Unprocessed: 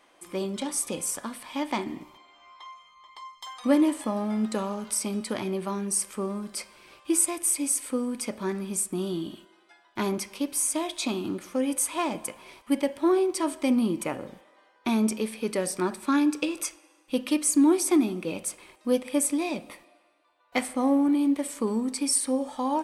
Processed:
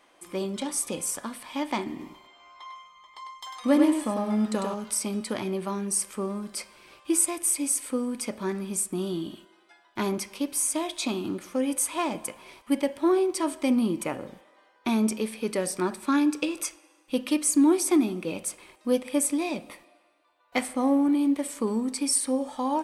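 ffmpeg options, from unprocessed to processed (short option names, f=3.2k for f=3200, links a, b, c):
-filter_complex "[0:a]asettb=1/sr,asplit=3[a][b][c];[a]atrim=end=1.894[d];[b]atrim=start=1.89:end=4.74,asetpts=PTS-STARTPTS,afade=t=in:d=0.004:c=qsin,afade=t=out:st=2.846:d=0.004:c=qsin,aecho=1:1:99:0.562,atrim=end_sample=125685[e];[c]atrim=start=4.736[f];[d][e]acrossfade=d=0.004:c1=hsin:c2=qsin[g];[g][f]acrossfade=d=0.004:c1=qsin:c2=hsin"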